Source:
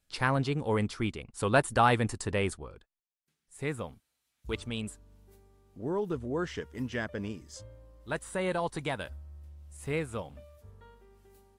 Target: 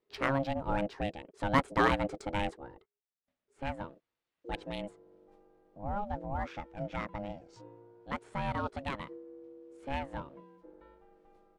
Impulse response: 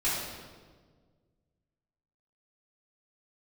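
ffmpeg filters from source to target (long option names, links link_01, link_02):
-af "aeval=exprs='val(0)*sin(2*PI*410*n/s)':channel_layout=same,adynamicsmooth=sensitivity=3.5:basefreq=3000"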